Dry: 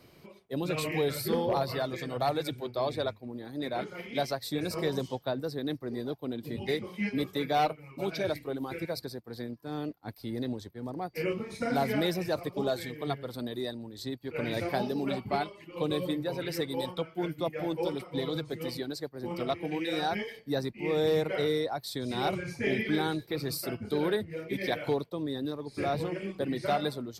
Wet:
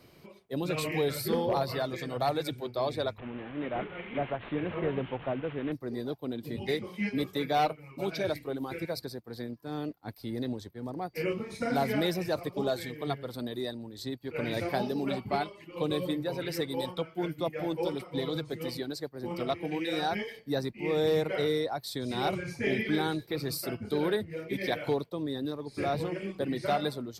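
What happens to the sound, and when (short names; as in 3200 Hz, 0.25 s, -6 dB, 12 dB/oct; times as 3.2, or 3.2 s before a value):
3.18–5.72 delta modulation 16 kbps, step -38.5 dBFS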